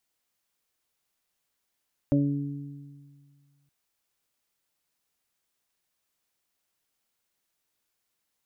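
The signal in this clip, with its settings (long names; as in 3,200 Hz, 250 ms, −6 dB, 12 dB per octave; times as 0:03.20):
harmonic partials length 1.57 s, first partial 142 Hz, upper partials 3.5/−15/−3.5 dB, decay 2.09 s, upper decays 1.50/1.28/0.36 s, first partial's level −23 dB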